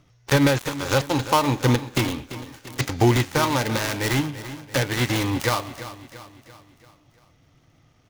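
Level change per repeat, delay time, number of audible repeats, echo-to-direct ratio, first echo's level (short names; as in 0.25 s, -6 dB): -6.0 dB, 0.34 s, 4, -12.5 dB, -14.0 dB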